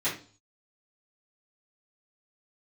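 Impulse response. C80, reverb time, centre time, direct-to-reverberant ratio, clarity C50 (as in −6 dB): 13.5 dB, 0.40 s, 27 ms, −13.0 dB, 7.5 dB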